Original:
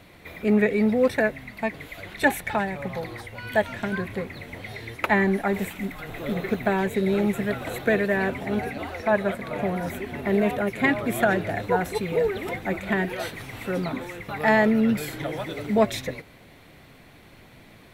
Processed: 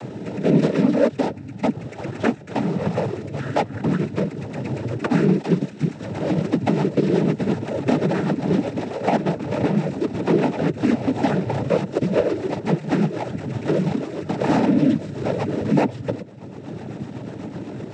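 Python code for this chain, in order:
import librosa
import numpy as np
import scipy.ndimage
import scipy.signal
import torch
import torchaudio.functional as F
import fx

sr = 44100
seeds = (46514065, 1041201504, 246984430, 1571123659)

y = scipy.ndimage.median_filter(x, 41, mode='constant')
y = fx.rotary_switch(y, sr, hz=0.9, then_hz=8.0, switch_at_s=2.97)
y = fx.noise_vocoder(y, sr, seeds[0], bands=12)
y = fx.band_squash(y, sr, depth_pct=70)
y = y * librosa.db_to_amplitude(8.0)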